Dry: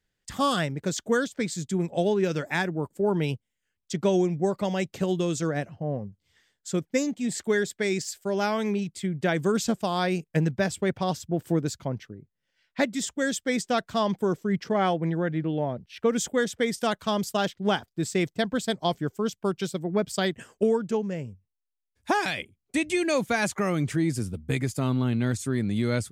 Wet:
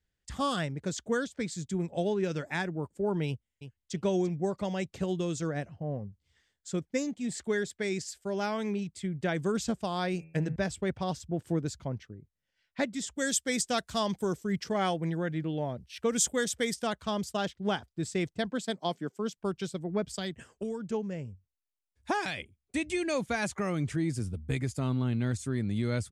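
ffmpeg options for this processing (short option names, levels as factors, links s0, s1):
-filter_complex "[0:a]asplit=2[s0][s1];[s1]afade=t=in:st=3.27:d=0.01,afade=t=out:st=3.94:d=0.01,aecho=0:1:340|680:0.281838|0.0422757[s2];[s0][s2]amix=inputs=2:normalize=0,asettb=1/sr,asplit=3[s3][s4][s5];[s3]atrim=end=10.124[s6];[s4]atrim=start=10.12:end=10.56,asetpts=PTS-STARTPTS,afade=t=in:d=0.004:c=qsin,afade=t=out:st=0.436:d=0.004:c=qsin,bandreject=f=80.58:t=h:w=4,bandreject=f=161.16:t=h:w=4,bandreject=f=241.74:t=h:w=4,bandreject=f=322.32:t=h:w=4,bandreject=f=402.9:t=h:w=4,bandreject=f=483.48:t=h:w=4,bandreject=f=564.06:t=h:w=4,bandreject=f=644.64:t=h:w=4,bandreject=f=725.22:t=h:w=4,bandreject=f=805.8:t=h:w=4,bandreject=f=886.38:t=h:w=4,bandreject=f=966.96:t=h:w=4,bandreject=f=1047.54:t=h:w=4,bandreject=f=1128.12:t=h:w=4,bandreject=f=1208.7:t=h:w=4,bandreject=f=1289.28:t=h:w=4,bandreject=f=1369.86:t=h:w=4,bandreject=f=1450.44:t=h:w=4,bandreject=f=1531.02:t=h:w=4,bandreject=f=1611.6:t=h:w=4,bandreject=f=1692.18:t=h:w=4,bandreject=f=1772.76:t=h:w=4,bandreject=f=1853.34:t=h:w=4,bandreject=f=1933.92:t=h:w=4,bandreject=f=2014.5:t=h:w=4,bandreject=f=2095.08:t=h:w=4,bandreject=f=2175.66:t=h:w=4,bandreject=f=2256.24:t=h:w=4,bandreject=f=2336.82:t=h:w=4,bandreject=f=2417.4:t=h:w=4,bandreject=f=2497.98:t=h:w=4,bandreject=f=2578.56:t=h:w=4,bandreject=f=2659.14:t=h:w=4[s7];[s5]atrim=start=10.556[s8];[s6][s7]acrossfade=d=0.004:c1=hsin:c2=qsin[s9];[s9][s8]acrossfade=d=0.004:c1=qsin:c2=hsin,asettb=1/sr,asplit=3[s10][s11][s12];[s10]atrim=end=13.164[s13];[s11]atrim=start=13.16:end=16.74,asetpts=PTS-STARTPTS,afade=t=in:d=0.004:c=qsin,afade=t=out:st=3.576:d=0.004:c=qsin,aemphasis=mode=production:type=75kf[s14];[s12]atrim=start=16.736[s15];[s13][s14]acrossfade=d=0.004:c1=hsin:c2=qsin[s16];[s16][s15]acrossfade=d=0.004:c1=qsin:c2=hsin,asettb=1/sr,asplit=3[s17][s18][s19];[s17]atrim=end=18.504[s20];[s18]atrim=start=18.5:end=19.37,asetpts=PTS-STARTPTS,afade=t=in:d=0.004:c=qsin,afade=t=out:st=0.866:d=0.004:c=qsin,highpass=f=170:w=0.5412,highpass=f=170:w=1.3066[s21];[s19]atrim=start=19.366[s22];[s20][s21]acrossfade=d=0.004:c1=hsin:c2=qsin[s23];[s23][s22]acrossfade=d=0.004:c1=qsin:c2=hsin,asettb=1/sr,asplit=3[s24][s25][s26];[s24]atrim=end=20.154[s27];[s25]atrim=start=20.15:end=20.9,asetpts=PTS-STARTPTS,afade=t=in:d=0.004:c=qsin,afade=t=out:st=0.746:d=0.004:c=qsin,acrossover=split=180|3000[s28][s29][s30];[s29]acompressor=threshold=0.0398:ratio=6:attack=3.2:release=140:knee=2.83:detection=peak[s31];[s28][s31][s30]amix=inputs=3:normalize=0[s32];[s26]atrim=start=20.896[s33];[s27][s32]acrossfade=d=0.004:c1=hsin:c2=qsin[s34];[s34][s33]acrossfade=d=0.004:c1=qsin:c2=hsin,lowpass=f=11000:w=0.5412,lowpass=f=11000:w=1.3066,equalizer=f=61:t=o:w=1.1:g=12.5,volume=0.501"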